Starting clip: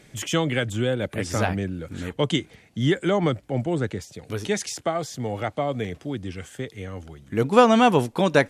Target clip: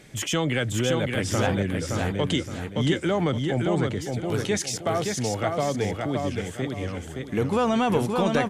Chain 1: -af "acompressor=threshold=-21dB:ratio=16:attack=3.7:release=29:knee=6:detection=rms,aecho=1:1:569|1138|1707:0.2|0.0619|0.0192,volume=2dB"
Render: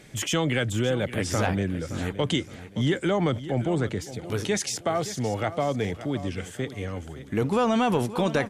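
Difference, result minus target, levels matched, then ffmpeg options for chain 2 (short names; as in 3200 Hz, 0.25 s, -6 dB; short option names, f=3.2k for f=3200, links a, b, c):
echo-to-direct -10 dB
-af "acompressor=threshold=-21dB:ratio=16:attack=3.7:release=29:knee=6:detection=rms,aecho=1:1:569|1138|1707|2276:0.631|0.196|0.0606|0.0188,volume=2dB"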